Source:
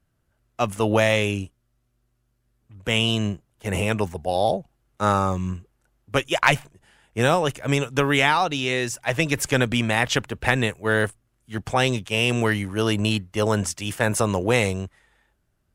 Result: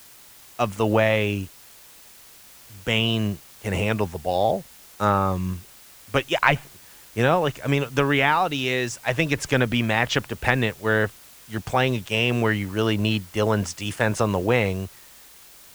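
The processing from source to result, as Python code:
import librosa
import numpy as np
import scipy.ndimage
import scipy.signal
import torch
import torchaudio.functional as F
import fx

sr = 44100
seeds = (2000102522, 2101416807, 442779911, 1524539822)

y = fx.env_lowpass_down(x, sr, base_hz=2800.0, full_db=-15.0)
y = fx.quant_dither(y, sr, seeds[0], bits=8, dither='triangular')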